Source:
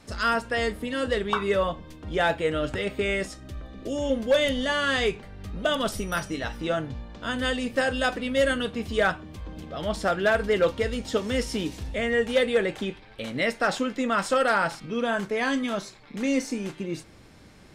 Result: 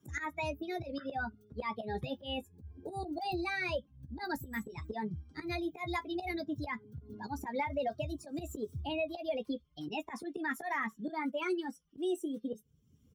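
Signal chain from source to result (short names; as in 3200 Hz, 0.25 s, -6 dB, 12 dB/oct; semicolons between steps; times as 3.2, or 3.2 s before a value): per-bin expansion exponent 2; bell 5400 Hz -12 dB 2.8 oct; limiter -24.5 dBFS, peak gain reduction 9 dB; auto swell 0.198 s; HPF 52 Hz; speed mistake 33 rpm record played at 45 rpm; doubler 14 ms -10 dB; three-band squash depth 70%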